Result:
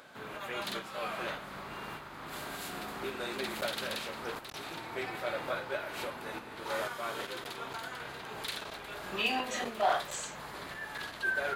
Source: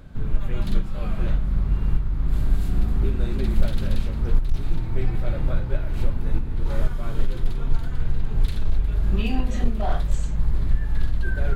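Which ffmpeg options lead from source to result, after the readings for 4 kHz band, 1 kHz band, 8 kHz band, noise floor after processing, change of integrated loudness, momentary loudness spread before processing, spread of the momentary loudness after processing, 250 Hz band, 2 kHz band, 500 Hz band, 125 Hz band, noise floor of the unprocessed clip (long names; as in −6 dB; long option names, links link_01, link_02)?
+5.0 dB, +3.5 dB, can't be measured, −46 dBFS, −10.0 dB, 5 LU, 11 LU, −13.0 dB, +5.0 dB, −1.5 dB, −27.5 dB, −27 dBFS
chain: -af "highpass=680,volume=5dB"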